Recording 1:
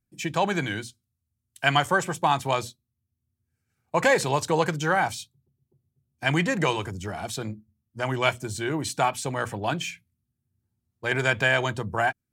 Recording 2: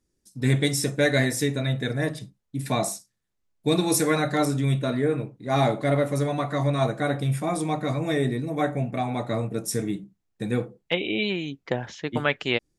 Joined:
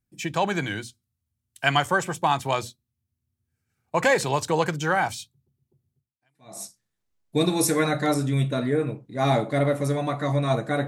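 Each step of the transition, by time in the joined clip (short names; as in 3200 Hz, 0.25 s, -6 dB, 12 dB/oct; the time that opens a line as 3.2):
recording 1
6.3 switch to recording 2 from 2.61 s, crossfade 0.66 s exponential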